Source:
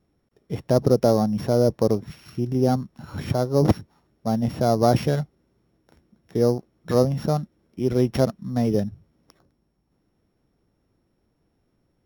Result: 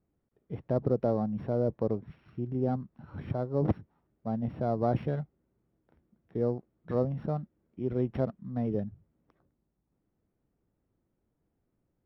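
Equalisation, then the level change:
high-frequency loss of the air 470 metres
−8.5 dB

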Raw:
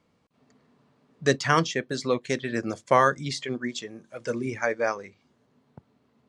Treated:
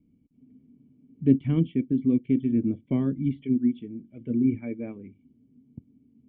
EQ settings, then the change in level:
formant resonators in series i
spectral tilt −4 dB per octave
notch filter 520 Hz, Q 12
+4.0 dB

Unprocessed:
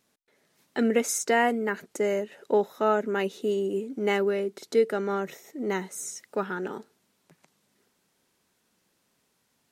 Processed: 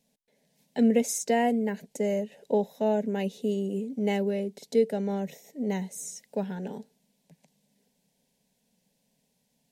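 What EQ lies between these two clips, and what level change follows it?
low-shelf EQ 320 Hz +9.5 dB
phaser with its sweep stopped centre 340 Hz, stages 6
−2.0 dB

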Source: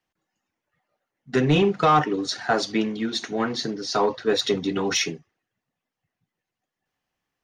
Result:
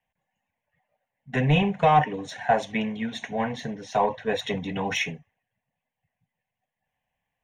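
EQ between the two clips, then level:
high-shelf EQ 4,200 Hz −8 dB
phaser with its sweep stopped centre 1,300 Hz, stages 6
+3.5 dB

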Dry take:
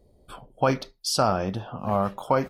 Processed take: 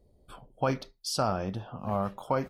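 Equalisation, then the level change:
low-shelf EQ 190 Hz +3.5 dB
−6.5 dB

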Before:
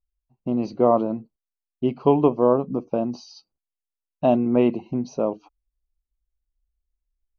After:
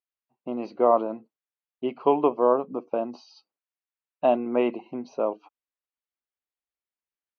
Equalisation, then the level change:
band-pass filter 330–2,300 Hz
tilt shelving filter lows −4.5 dB, about 1,100 Hz
+1.5 dB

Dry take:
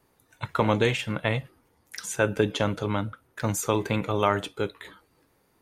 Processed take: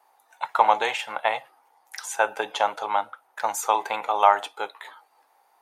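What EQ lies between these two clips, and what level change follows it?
high-pass with resonance 800 Hz, resonance Q 6
0.0 dB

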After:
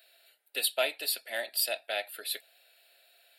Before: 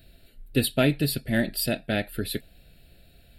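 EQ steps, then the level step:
high-pass filter 660 Hz 24 dB per octave
dynamic equaliser 1,600 Hz, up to −7 dB, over −46 dBFS, Q 2
0.0 dB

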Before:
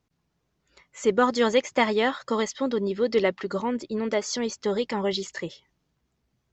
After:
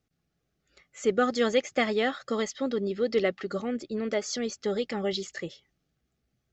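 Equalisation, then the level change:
Butterworth band-reject 970 Hz, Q 3.6
−3.0 dB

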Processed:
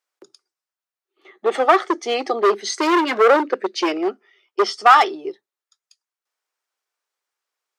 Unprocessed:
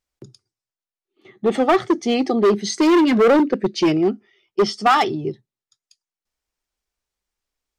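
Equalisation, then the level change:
high-pass filter 380 Hz 24 dB per octave
parametric band 1,300 Hz +6 dB 1.2 octaves
0.0 dB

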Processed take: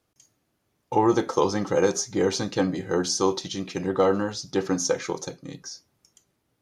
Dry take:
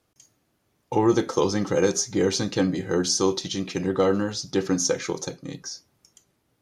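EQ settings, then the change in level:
dynamic equaliser 860 Hz, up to +7 dB, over −35 dBFS, Q 0.86
−3.0 dB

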